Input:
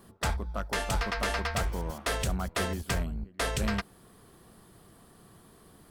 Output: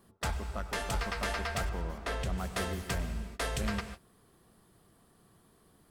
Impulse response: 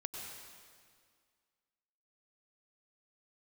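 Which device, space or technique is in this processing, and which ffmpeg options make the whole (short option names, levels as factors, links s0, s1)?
keyed gated reverb: -filter_complex "[0:a]asplit=3[s0][s1][s2];[1:a]atrim=start_sample=2205[s3];[s1][s3]afir=irnorm=-1:irlink=0[s4];[s2]apad=whole_len=260624[s5];[s4][s5]sidechaingate=range=0.0224:threshold=0.00447:ratio=16:detection=peak,volume=0.841[s6];[s0][s6]amix=inputs=2:normalize=0,asettb=1/sr,asplit=3[s7][s8][s9];[s7]atrim=end=1.694[s10];[s8]atrim=start=1.69:end=2.38,asetpts=PTS-STARTPTS,afade=t=in:d=0.004:c=qsin,afade=t=out:st=0.686:d=0.004:c=qsin,lowpass=f=3000:p=1[s11];[s9]atrim=start=2.376[s12];[s10][s11]acrossfade=d=0.004:c1=hsin:c2=qsin[s13];[s13][s12]acrossfade=d=0.004:c1=qsin:c2=hsin,volume=0.398"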